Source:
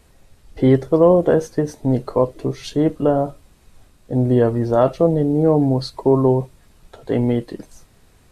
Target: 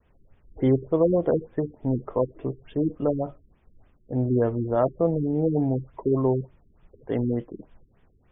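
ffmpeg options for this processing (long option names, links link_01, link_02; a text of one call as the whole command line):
ffmpeg -i in.wav -af "agate=range=-33dB:threshold=-50dB:ratio=3:detection=peak,afftfilt=real='re*lt(b*sr/1024,400*pow(3700/400,0.5+0.5*sin(2*PI*3.4*pts/sr)))':imag='im*lt(b*sr/1024,400*pow(3700/400,0.5+0.5*sin(2*PI*3.4*pts/sr)))':win_size=1024:overlap=0.75,volume=-7dB" out.wav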